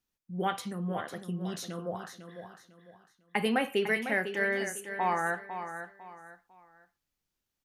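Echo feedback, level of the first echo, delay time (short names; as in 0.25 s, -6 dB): 31%, -9.5 dB, 0.501 s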